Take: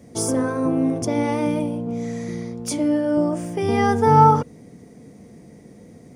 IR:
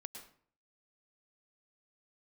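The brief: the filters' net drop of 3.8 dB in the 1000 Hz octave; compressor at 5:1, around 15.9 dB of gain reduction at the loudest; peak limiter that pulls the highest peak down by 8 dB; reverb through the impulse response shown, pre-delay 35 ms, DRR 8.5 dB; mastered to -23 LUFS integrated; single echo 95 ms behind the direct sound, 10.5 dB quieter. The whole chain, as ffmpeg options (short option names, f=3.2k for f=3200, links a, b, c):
-filter_complex "[0:a]equalizer=f=1k:t=o:g=-4.5,acompressor=threshold=-29dB:ratio=5,alimiter=level_in=1.5dB:limit=-24dB:level=0:latency=1,volume=-1.5dB,aecho=1:1:95:0.299,asplit=2[a][b];[1:a]atrim=start_sample=2205,adelay=35[c];[b][c]afir=irnorm=-1:irlink=0,volume=-4.5dB[d];[a][d]amix=inputs=2:normalize=0,volume=9.5dB"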